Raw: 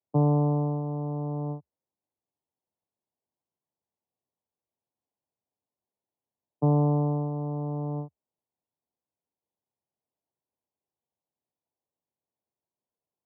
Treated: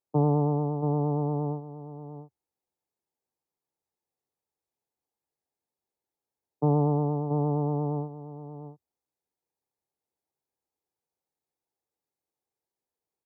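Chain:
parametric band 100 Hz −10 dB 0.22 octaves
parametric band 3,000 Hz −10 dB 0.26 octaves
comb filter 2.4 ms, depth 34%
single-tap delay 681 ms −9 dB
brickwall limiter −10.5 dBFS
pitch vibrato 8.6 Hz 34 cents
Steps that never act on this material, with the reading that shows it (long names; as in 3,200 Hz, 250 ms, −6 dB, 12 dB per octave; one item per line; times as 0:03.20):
parametric band 3,000 Hz: nothing at its input above 1,100 Hz
brickwall limiter −10.5 dBFS: peak of its input −15.5 dBFS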